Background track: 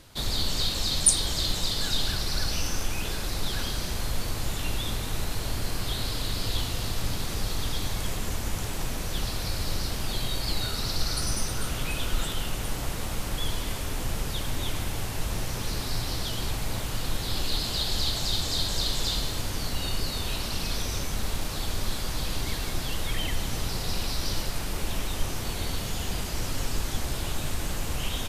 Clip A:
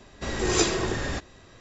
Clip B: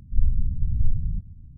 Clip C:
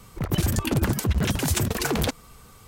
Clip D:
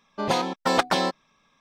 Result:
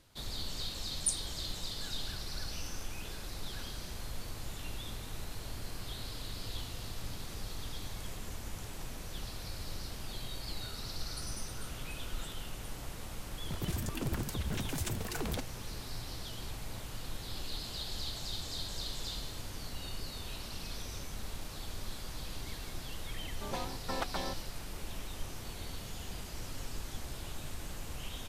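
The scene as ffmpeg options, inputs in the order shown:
ffmpeg -i bed.wav -i cue0.wav -i cue1.wav -i cue2.wav -i cue3.wav -filter_complex "[0:a]volume=-12dB[link_01];[3:a]atrim=end=2.67,asetpts=PTS-STARTPTS,volume=-13.5dB,afade=type=in:duration=0.004:curve=hsin,afade=type=out:start_time=2.666:duration=0.004:curve=hsin,adelay=13300[link_02];[4:a]atrim=end=1.6,asetpts=PTS-STARTPTS,volume=-15.5dB,afade=type=in:duration=0.004:curve=hsin,afade=type=out:start_time=1.596:duration=0.004:curve=hsin,adelay=23230[link_03];[link_01][link_02][link_03]amix=inputs=3:normalize=0" out.wav

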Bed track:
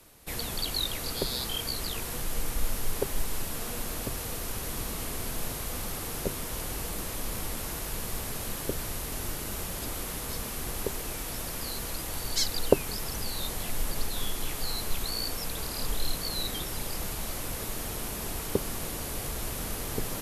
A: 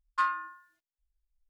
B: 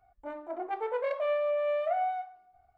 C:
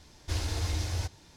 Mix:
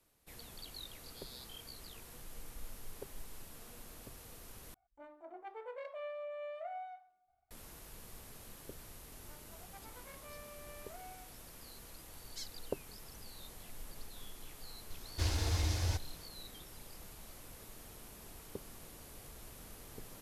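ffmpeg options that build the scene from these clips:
ffmpeg -i bed.wav -i cue0.wav -i cue1.wav -i cue2.wav -filter_complex "[2:a]asplit=2[link_01][link_02];[0:a]volume=-18dB[link_03];[link_01]highshelf=frequency=2300:gain=6[link_04];[link_02]highpass=1100[link_05];[link_03]asplit=2[link_06][link_07];[link_06]atrim=end=4.744[link_08];[link_04]atrim=end=2.77,asetpts=PTS-STARTPTS,volume=-15dB[link_09];[link_07]atrim=start=7.506[link_10];[link_05]atrim=end=2.77,asetpts=PTS-STARTPTS,volume=-15.5dB,afade=type=in:duration=0.004:curve=hsin,afade=type=out:start_time=2.766:duration=0.004:curve=hsin,adelay=9030[link_11];[3:a]atrim=end=1.36,asetpts=PTS-STARTPTS,volume=-2dB,afade=type=in:duration=0.004:curve=hsin,afade=type=out:start_time=1.356:duration=0.004:curve=hsin,adelay=14900[link_12];[link_08][link_09]acrossfade=duration=0.004:curve1=hsin:curve2=hsin[link_13];[link_13][link_10]acrossfade=duration=0.004:curve1=hsin:curve2=hsin[link_14];[link_14][link_11][link_12]amix=inputs=3:normalize=0" out.wav

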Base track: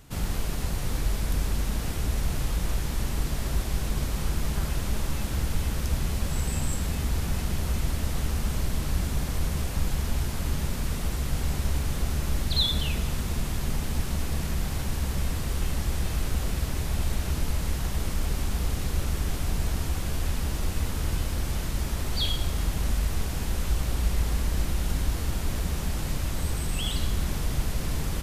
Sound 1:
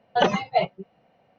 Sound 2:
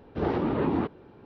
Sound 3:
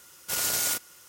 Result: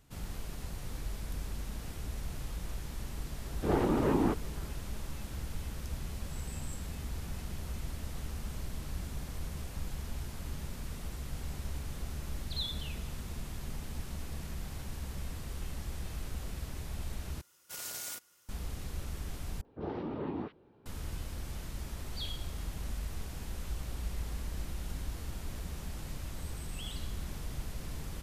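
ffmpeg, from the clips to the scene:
ffmpeg -i bed.wav -i cue0.wav -i cue1.wav -i cue2.wav -filter_complex "[2:a]asplit=2[link_01][link_02];[0:a]volume=-12dB[link_03];[link_02]acrossover=split=1600[link_04][link_05];[link_05]adelay=40[link_06];[link_04][link_06]amix=inputs=2:normalize=0[link_07];[link_03]asplit=3[link_08][link_09][link_10];[link_08]atrim=end=17.414[link_11];[3:a]atrim=end=1.08,asetpts=PTS-STARTPTS,volume=-14dB[link_12];[link_09]atrim=start=18.486:end=19.614[link_13];[link_07]atrim=end=1.25,asetpts=PTS-STARTPTS,volume=-11dB[link_14];[link_10]atrim=start=20.856[link_15];[link_01]atrim=end=1.25,asetpts=PTS-STARTPTS,volume=-2dB,afade=type=in:duration=0.004:curve=hsin,afade=type=out:start_time=1.246:duration=0.004:curve=hsin,adelay=3470[link_16];[link_11][link_12]acrossfade=duration=0.004:curve1=hsin:curve2=hsin[link_17];[link_17][link_13]acrossfade=duration=0.004:curve1=hsin:curve2=hsin[link_18];[link_18][link_14]acrossfade=duration=0.004:curve1=hsin:curve2=hsin[link_19];[link_19][link_15]acrossfade=duration=0.004:curve1=hsin:curve2=hsin[link_20];[link_20][link_16]amix=inputs=2:normalize=0" out.wav

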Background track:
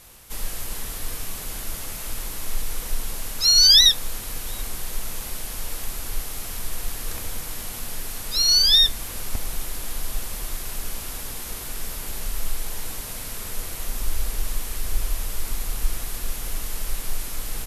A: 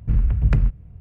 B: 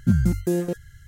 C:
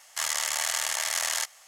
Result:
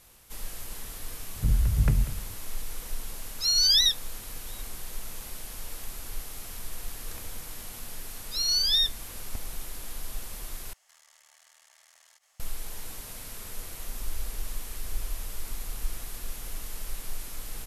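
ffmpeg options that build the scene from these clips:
ffmpeg -i bed.wav -i cue0.wav -i cue1.wav -i cue2.wav -filter_complex "[0:a]volume=-8dB[link_01];[1:a]aecho=1:1:192:0.188[link_02];[3:a]acompressor=threshold=-45dB:ratio=5:attack=3.3:release=46:knee=1:detection=rms[link_03];[link_01]asplit=2[link_04][link_05];[link_04]atrim=end=10.734[link_06];[link_03]atrim=end=1.67,asetpts=PTS-STARTPTS,volume=-13dB[link_07];[link_05]atrim=start=12.396[link_08];[link_02]atrim=end=1,asetpts=PTS-STARTPTS,volume=-5dB,afade=type=in:duration=0.004:curve=hsin,afade=type=out:start_time=0.996:duration=0.004:curve=hsin,adelay=1350[link_09];[link_06][link_07]acrossfade=duration=0.004:curve1=hsin:curve2=hsin[link_10];[link_10][link_08]acrossfade=duration=0.004:curve1=hsin:curve2=hsin[link_11];[link_11][link_09]amix=inputs=2:normalize=0" out.wav

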